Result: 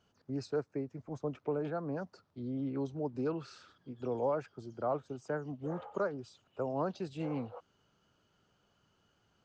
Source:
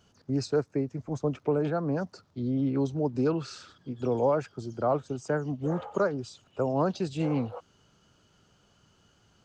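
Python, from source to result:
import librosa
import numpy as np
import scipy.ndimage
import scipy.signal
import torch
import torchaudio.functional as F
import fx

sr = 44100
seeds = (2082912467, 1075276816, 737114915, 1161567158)

y = fx.lowpass(x, sr, hz=3000.0, slope=6)
y = fx.low_shelf(y, sr, hz=270.0, db=-5.5)
y = y * 10.0 ** (-6.0 / 20.0)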